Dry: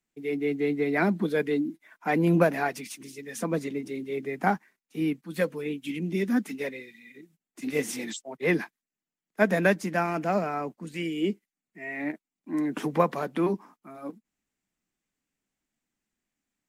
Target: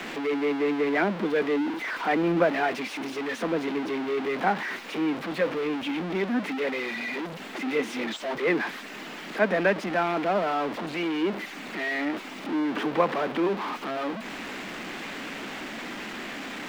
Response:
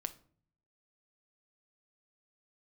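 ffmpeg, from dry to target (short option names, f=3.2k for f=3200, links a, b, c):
-filter_complex "[0:a]aeval=exprs='val(0)+0.5*0.0708*sgn(val(0))':c=same,acrossover=split=220 3900:gain=0.112 1 0.0708[a][b][c];[a][b][c]amix=inputs=3:normalize=0,volume=-1.5dB"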